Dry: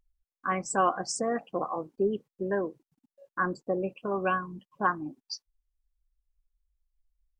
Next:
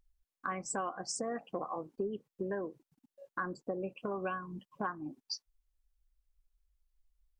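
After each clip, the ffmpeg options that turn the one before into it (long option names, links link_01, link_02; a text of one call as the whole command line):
ffmpeg -i in.wav -af "acompressor=threshold=-36dB:ratio=4,volume=1dB" out.wav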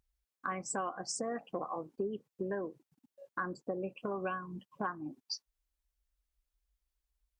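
ffmpeg -i in.wav -af "highpass=47" out.wav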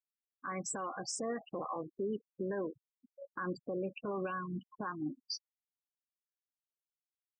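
ffmpeg -i in.wav -af "afftfilt=real='re*gte(hypot(re,im),0.00708)':imag='im*gte(hypot(re,im),0.00708)':win_size=1024:overlap=0.75,bandreject=frequency=720:width=12,alimiter=level_in=10dB:limit=-24dB:level=0:latency=1:release=39,volume=-10dB,volume=4.5dB" out.wav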